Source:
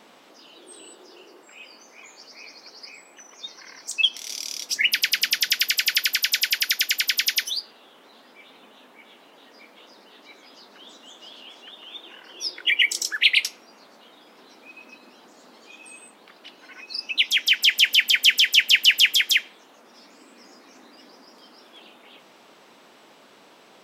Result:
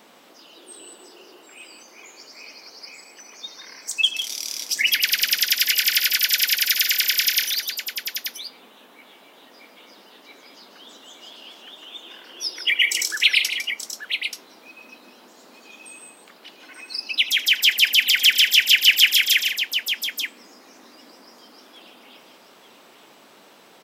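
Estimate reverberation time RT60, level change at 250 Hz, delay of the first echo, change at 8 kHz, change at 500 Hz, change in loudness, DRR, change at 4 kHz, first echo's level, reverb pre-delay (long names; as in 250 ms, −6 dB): no reverb audible, +1.0 dB, 80 ms, +3.5 dB, +1.0 dB, +1.0 dB, no reverb audible, +2.0 dB, −17.5 dB, no reverb audible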